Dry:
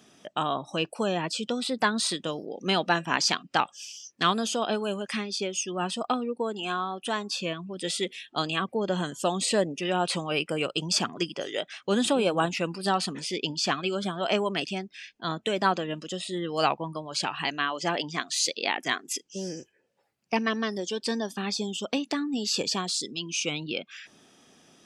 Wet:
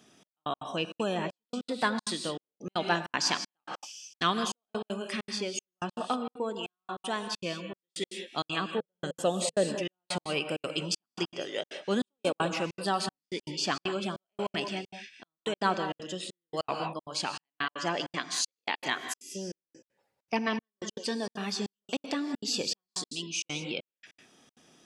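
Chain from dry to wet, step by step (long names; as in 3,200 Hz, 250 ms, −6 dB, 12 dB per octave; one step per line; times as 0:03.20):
reverb whose tail is shaped and stops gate 220 ms rising, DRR 7.5 dB
gate pattern "xxx...x.xxxx.x" 196 BPM −60 dB
0:08.78–0:09.68: thirty-one-band graphic EQ 160 Hz +3 dB, 500 Hz +8 dB, 1,000 Hz −8 dB, 5,000 Hz −3 dB
level −3.5 dB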